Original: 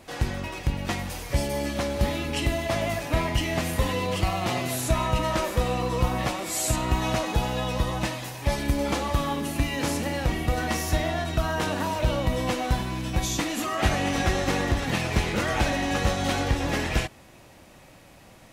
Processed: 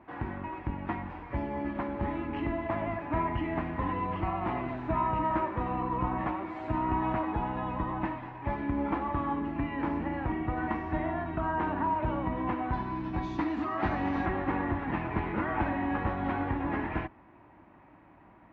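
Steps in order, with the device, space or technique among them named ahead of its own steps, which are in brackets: 12.73–14.26 band shelf 6500 Hz +12.5 dB; sub-octave bass pedal (octaver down 2 oct, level -4 dB; speaker cabinet 65–2000 Hz, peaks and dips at 72 Hz -5 dB, 140 Hz -5 dB, 310 Hz +7 dB, 510 Hz -8 dB, 960 Hz +8 dB); gain -5.5 dB

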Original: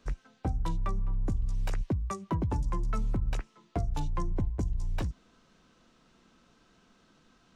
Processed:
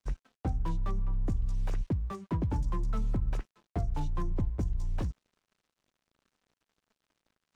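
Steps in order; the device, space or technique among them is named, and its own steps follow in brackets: early transistor amplifier (crossover distortion -58 dBFS; slew limiter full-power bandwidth 14 Hz)

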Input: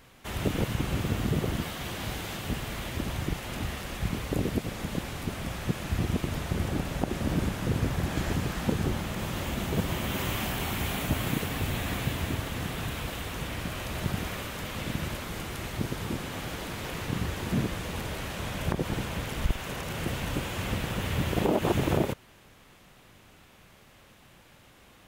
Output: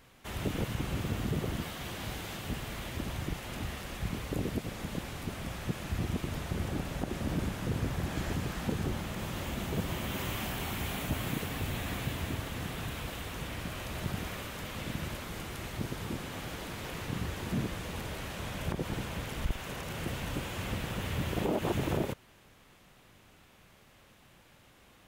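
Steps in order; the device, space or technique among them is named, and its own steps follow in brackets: saturation between pre-emphasis and de-emphasis (high shelf 2100 Hz +10.5 dB; soft clip -16 dBFS, distortion -22 dB; high shelf 2100 Hz -10.5 dB); gain -4 dB

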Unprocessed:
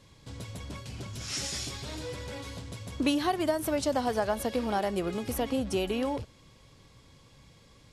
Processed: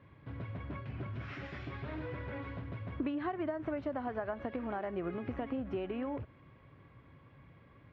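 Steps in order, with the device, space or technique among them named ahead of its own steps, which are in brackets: bass amplifier (compressor 5:1, threshold -33 dBFS, peak gain reduction 10.5 dB; speaker cabinet 79–2100 Hz, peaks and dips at 200 Hz -5 dB, 480 Hz -6 dB, 850 Hz -5 dB); gain +1.5 dB

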